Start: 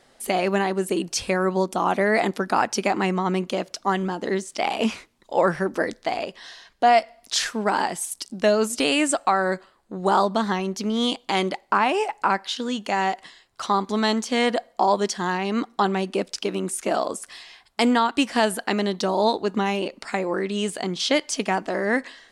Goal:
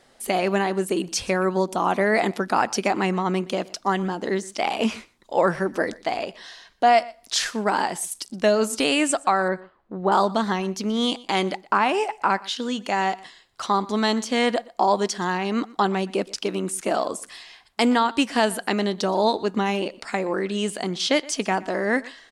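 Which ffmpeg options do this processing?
-filter_complex "[0:a]asettb=1/sr,asplit=3[s0][s1][s2];[s0]atrim=end=9.484[s3];[s1]atrim=start=9.48:end=10.12,asetpts=PTS-STARTPTS,afade=t=in:d=0.004:c=qsin,afade=t=out:st=0.636:d=0.004:c=qsin,lowpass=2200[s4];[s2]atrim=start=10.116[s5];[s3][s4]acrossfade=d=0.004:c1=hsin:c2=qsin[s6];[s6][s5]acrossfade=d=0.004:c1=qsin:c2=hsin,aecho=1:1:121:0.0841"

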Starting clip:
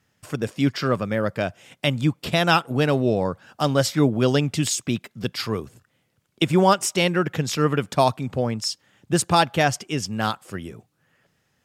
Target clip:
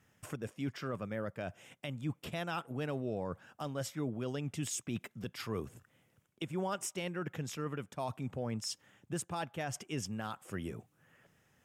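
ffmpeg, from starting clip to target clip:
-af "areverse,acompressor=threshold=0.0398:ratio=6,areverse,equalizer=f=4400:t=o:w=0.53:g=-9,alimiter=level_in=1.26:limit=0.0631:level=0:latency=1:release=407,volume=0.794,volume=0.891"

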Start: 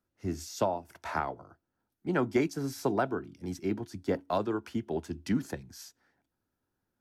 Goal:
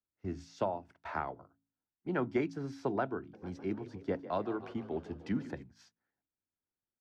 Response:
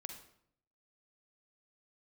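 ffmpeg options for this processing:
-filter_complex "[0:a]agate=range=0.251:threshold=0.00398:ratio=16:detection=peak,lowpass=3300,bandreject=f=54.91:t=h:w=4,bandreject=f=109.82:t=h:w=4,bandreject=f=164.73:t=h:w=4,bandreject=f=219.64:t=h:w=4,bandreject=f=274.55:t=h:w=4,asplit=3[s0][s1][s2];[s0]afade=t=out:st=3.33:d=0.02[s3];[s1]asplit=7[s4][s5][s6][s7][s8][s9][s10];[s5]adelay=151,afreqshift=38,volume=0.188[s11];[s6]adelay=302,afreqshift=76,volume=0.11[s12];[s7]adelay=453,afreqshift=114,volume=0.0631[s13];[s8]adelay=604,afreqshift=152,volume=0.0367[s14];[s9]adelay=755,afreqshift=190,volume=0.0214[s15];[s10]adelay=906,afreqshift=228,volume=0.0123[s16];[s4][s11][s12][s13][s14][s15][s16]amix=inputs=7:normalize=0,afade=t=in:st=3.33:d=0.02,afade=t=out:st=5.62:d=0.02[s17];[s2]afade=t=in:st=5.62:d=0.02[s18];[s3][s17][s18]amix=inputs=3:normalize=0,volume=0.596"

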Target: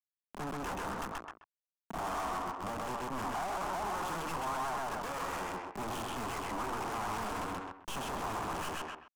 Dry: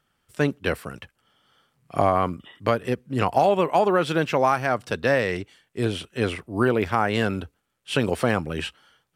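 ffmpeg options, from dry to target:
-filter_complex "[0:a]bandreject=f=60:t=h:w=6,bandreject=f=120:t=h:w=6,bandreject=f=180:t=h:w=6,bandreject=f=240:t=h:w=6,bandreject=f=300:t=h:w=6,bandreject=f=360:t=h:w=6,bandreject=f=420:t=h:w=6,bandreject=f=480:t=h:w=6,bandreject=f=540:t=h:w=6,bandreject=f=600:t=h:w=6,acompressor=threshold=0.0141:ratio=2.5,aresample=11025,acrusher=bits=3:mode=log:mix=0:aa=0.000001,aresample=44100,acontrast=46,acrusher=bits=3:dc=4:mix=0:aa=0.000001,equalizer=f=190:t=o:w=0.3:g=-13.5,asplit=2[s0][s1];[s1]adelay=130,lowpass=f=3300:p=1,volume=0.447,asplit=2[s2][s3];[s3]adelay=130,lowpass=f=3300:p=1,volume=0.17,asplit=2[s4][s5];[s5]adelay=130,lowpass=f=3300:p=1,volume=0.17[s6];[s2][s4][s6]amix=inputs=3:normalize=0[s7];[s0][s7]amix=inputs=2:normalize=0,asplit=2[s8][s9];[s9]highpass=f=720:p=1,volume=44.7,asoftclip=type=tanh:threshold=0.112[s10];[s8][s10]amix=inputs=2:normalize=0,lowpass=f=1400:p=1,volume=0.501,asoftclip=type=tanh:threshold=0.0119,equalizer=f=125:t=o:w=1:g=-7,equalizer=f=500:t=o:w=1:g=-10,equalizer=f=1000:t=o:w=1:g=7,equalizer=f=2000:t=o:w=1:g=-7,equalizer=f=4000:t=o:w=1:g=-9,volume=1.88"

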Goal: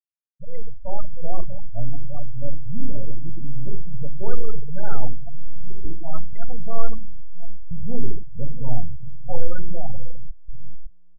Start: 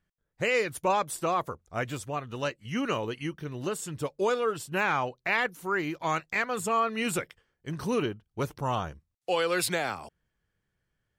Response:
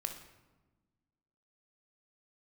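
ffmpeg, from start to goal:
-filter_complex "[0:a]aeval=exprs='if(lt(val(0),0),0.251*val(0),val(0))':c=same,asettb=1/sr,asplit=3[s0][s1][s2];[s0]atrim=end=6.984[s3];[s1]atrim=start=6.98:end=7.71,asetpts=PTS-STARTPTS,afade=t=in:d=0.004:c=qsin,afade=t=out:st=0.726:d=0.004:c=qsin,highpass=930[s4];[s2]atrim=start=7.706[s5];[s3][s4]acrossfade=d=0.004:c1=hsin:c2=qsin[s6];[s6][s5]acrossfade=d=0.004:c1=qsin:c2=hsin[s7];[1:a]atrim=start_sample=2205,asetrate=48510,aresample=44100[s8];[s7][s8]afir=irnorm=-1:irlink=0,asettb=1/sr,asplit=3[s9][s10][s11];[s9]atrim=end=5.204[s12];[s10]atrim=start=5.2:end=5.85,asetpts=PTS-STARTPTS,afade=t=in:d=0.004:c=qsin,afade=t=out:st=0.646:d=0.004:c=qsin,acompressor=threshold=0.0282:ratio=10[s13];[s11]atrim=start=5.846[s14];[s12][s13]acrossfade=d=0.004:c1=hsin:c2=qsin[s15];[s15][s14]acrossfade=d=0.004:c1=qsin:c2=hsin,asplit=2[s16][s17];[s17]adelay=642,lowpass=f=4900:p=1,volume=0.316,asplit=2[s18][s19];[s19]adelay=642,lowpass=f=4900:p=1,volume=0.54,asplit=2[s20][s21];[s21]adelay=642,lowpass=f=4900:p=1,volume=0.54,asplit=2[s22][s23];[s23]adelay=642,lowpass=f=4900:p=1,volume=0.54,asplit=2[s24][s25];[s25]adelay=642,lowpass=f=4900:p=1,volume=0.54,asplit=2[s26][s27];[s27]adelay=642,lowpass=f=4900:p=1,volume=0.54[s28];[s16][s18][s20][s22][s24][s26][s28]amix=inputs=7:normalize=0,afwtdn=0.0178,dynaudnorm=f=200:g=9:m=2.66,aemphasis=mode=reproduction:type=riaa,afftfilt=real='re*gte(hypot(re,im),0.282)':imag='im*gte(hypot(re,im),0.282)':win_size=1024:overlap=0.75,adynamicequalizer=threshold=0.00891:dfrequency=2000:dqfactor=0.7:tfrequency=2000:tqfactor=0.7:attack=5:release=100:ratio=0.375:range=3:mode=boostabove:tftype=highshelf,volume=0.299"

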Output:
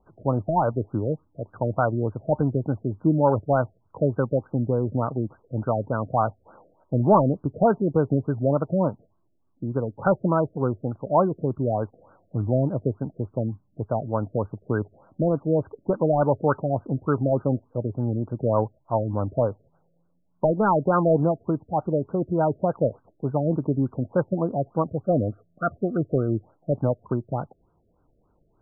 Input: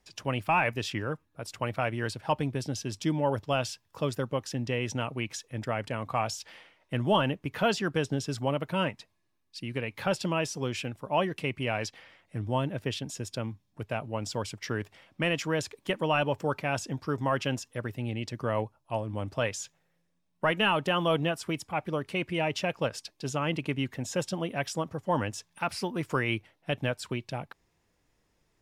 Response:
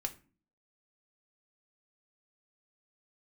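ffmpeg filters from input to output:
-filter_complex "[0:a]asplit=3[s0][s1][s2];[s0]afade=t=out:st=25.02:d=0.02[s3];[s1]asuperstop=centerf=930:order=12:qfactor=2.1,afade=t=in:st=25.02:d=0.02,afade=t=out:st=26.33:d=0.02[s4];[s2]afade=t=in:st=26.33:d=0.02[s5];[s3][s4][s5]amix=inputs=3:normalize=0,afftfilt=real='re*lt(b*sr/1024,670*pow(1600/670,0.5+0.5*sin(2*PI*3.4*pts/sr)))':imag='im*lt(b*sr/1024,670*pow(1600/670,0.5+0.5*sin(2*PI*3.4*pts/sr)))':win_size=1024:overlap=0.75,volume=2.51"

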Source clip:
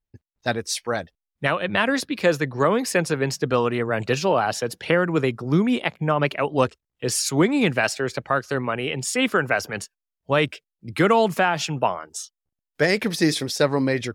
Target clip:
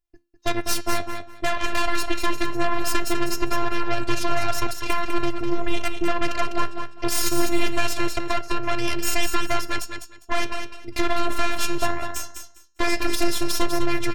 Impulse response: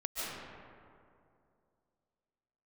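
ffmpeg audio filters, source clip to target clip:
-filter_complex "[0:a]acontrast=89,bandreject=f=222.4:t=h:w=4,bandreject=f=444.8:t=h:w=4,bandreject=f=667.2:t=h:w=4,bandreject=f=889.6:t=h:w=4,bandreject=f=1112:t=h:w=4,bandreject=f=1334.4:t=h:w=4,bandreject=f=1556.8:t=h:w=4,bandreject=f=1779.2:t=h:w=4,bandreject=f=2001.6:t=h:w=4,bandreject=f=2224:t=h:w=4,bandreject=f=2446.4:t=h:w=4,bandreject=f=2668.8:t=h:w=4,bandreject=f=2891.2:t=h:w=4,bandreject=f=3113.6:t=h:w=4,bandreject=f=3336:t=h:w=4,bandreject=f=3558.4:t=h:w=4,bandreject=f=3780.8:t=h:w=4,bandreject=f=4003.2:t=h:w=4,bandreject=f=4225.6:t=h:w=4,bandreject=f=4448:t=h:w=4,bandreject=f=4670.4:t=h:w=4,bandreject=f=4892.8:t=h:w=4,bandreject=f=5115.2:t=h:w=4,bandreject=f=5337.6:t=h:w=4,bandreject=f=5560:t=h:w=4,bandreject=f=5782.4:t=h:w=4,bandreject=f=6004.8:t=h:w=4,bandreject=f=6227.2:t=h:w=4,bandreject=f=6449.6:t=h:w=4,bandreject=f=6672:t=h:w=4,bandreject=f=6894.4:t=h:w=4,bandreject=f=7116.8:t=h:w=4,bandreject=f=7339.2:t=h:w=4,bandreject=f=7561.6:t=h:w=4,acompressor=threshold=0.178:ratio=6,aeval=exprs='0.596*(cos(1*acos(clip(val(0)/0.596,-1,1)))-cos(1*PI/2))+0.211*(cos(6*acos(clip(val(0)/0.596,-1,1)))-cos(6*PI/2))':c=same,flanger=delay=6.5:depth=8.9:regen=82:speed=0.22:shape=sinusoidal,afftfilt=real='hypot(re,im)*cos(PI*b)':imag='0':win_size=512:overlap=0.75,asplit=2[s0][s1];[s1]aecho=0:1:201|402|603:0.447|0.0893|0.0179[s2];[s0][s2]amix=inputs=2:normalize=0"

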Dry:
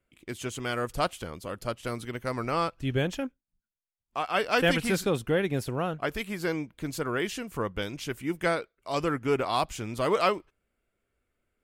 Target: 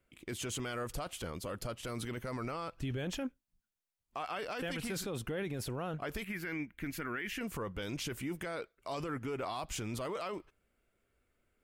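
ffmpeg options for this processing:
-filter_complex "[0:a]asettb=1/sr,asplit=3[s0][s1][s2];[s0]atrim=end=6.244[s3];[s1]atrim=start=6.24:end=7.41,asetpts=PTS-STARTPTS,afade=t=in:d=0.004:c=qsin,afade=t=out:st=1.166:d=0.004:c=qsin,equalizer=f=125:t=o:w=1:g=-9,equalizer=f=500:t=o:w=1:g=-11,equalizer=f=1000:t=o:w=1:g=-8,equalizer=f=2000:t=o:w=1:g=9,equalizer=f=4000:t=o:w=1:g=-10,equalizer=f=8000:t=o:w=1:g=-11[s4];[s2]atrim=start=7.406[s5];[s3][s4]acrossfade=d=0.004:c1=hsin:c2=qsin[s6];[s6][s5]acrossfade=d=0.004:c1=qsin:c2=hsin,acompressor=threshold=0.0398:ratio=6,alimiter=level_in=2.24:limit=0.0631:level=0:latency=1:release=10,volume=0.447,volume=1.19"

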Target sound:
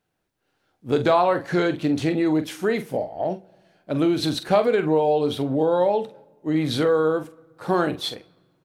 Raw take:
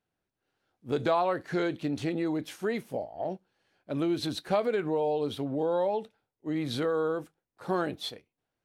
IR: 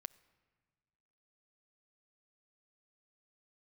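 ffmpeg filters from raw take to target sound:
-filter_complex "[0:a]asplit=2[s0][s1];[s1]adelay=45,volume=0.282[s2];[s0][s2]amix=inputs=2:normalize=0,asplit=2[s3][s4];[1:a]atrim=start_sample=2205[s5];[s4][s5]afir=irnorm=-1:irlink=0,volume=2.66[s6];[s3][s6]amix=inputs=2:normalize=0"

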